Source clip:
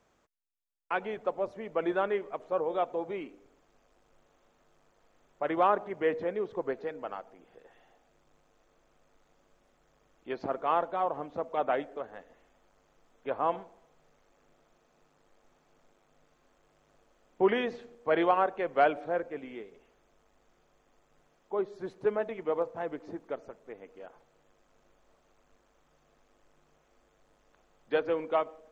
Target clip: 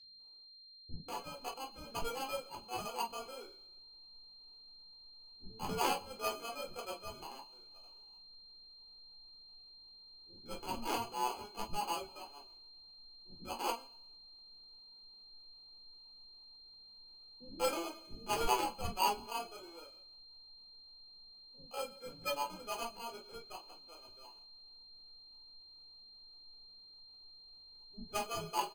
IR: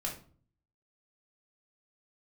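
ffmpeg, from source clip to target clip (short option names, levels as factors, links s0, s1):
-filter_complex "[0:a]bandreject=f=570:w=17,acrusher=samples=32:mix=1:aa=0.000001,atempo=0.74,acrossover=split=190[s0][s1];[s1]adelay=260[s2];[s0][s2]amix=inputs=2:normalize=0,aeval=exprs='0.501*(cos(1*acos(clip(val(0)/0.501,-1,1)))-cos(1*PI/2))+0.0282*(cos(7*acos(clip(val(0)/0.501,-1,1)))-cos(7*PI/2))':c=same,aeval=exprs='val(0)+0.00316*sin(2*PI*3100*n/s)':c=same[s3];[1:a]atrim=start_sample=2205,atrim=end_sample=3528[s4];[s3][s4]afir=irnorm=-1:irlink=0,asetrate=59535,aresample=44100,volume=0.422"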